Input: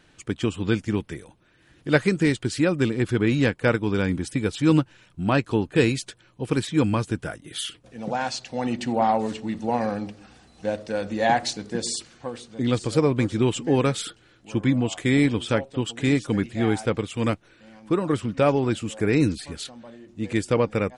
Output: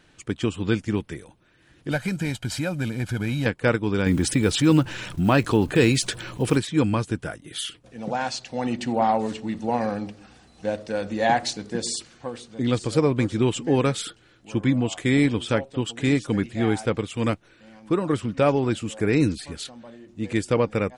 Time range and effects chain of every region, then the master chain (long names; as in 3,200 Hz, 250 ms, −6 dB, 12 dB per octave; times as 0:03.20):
0:01.91–0:03.46: variable-slope delta modulation 64 kbit/s + comb filter 1.3 ms, depth 63% + downward compressor 2 to 1, threshold −25 dBFS
0:04.06–0:06.58: one scale factor per block 7 bits + envelope flattener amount 50%
whole clip: no processing